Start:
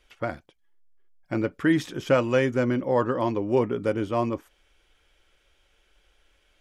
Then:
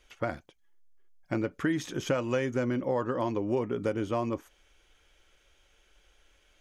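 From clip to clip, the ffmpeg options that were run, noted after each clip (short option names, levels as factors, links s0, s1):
-af "equalizer=f=6400:w=7.7:g=8,acompressor=threshold=0.0501:ratio=4"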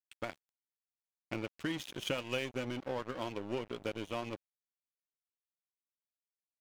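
-af "firequalizer=gain_entry='entry(1800,0);entry(2700,14);entry(5400,4)':delay=0.05:min_phase=1,aeval=exprs='sgn(val(0))*max(abs(val(0))-0.0178,0)':c=same,volume=0.501"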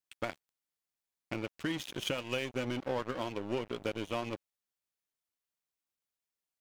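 -af "alimiter=limit=0.0631:level=0:latency=1:release=370,volume=1.5"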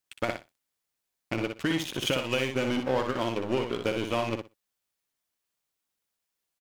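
-af "aecho=1:1:61|122|183:0.501|0.0752|0.0113,volume=2.11"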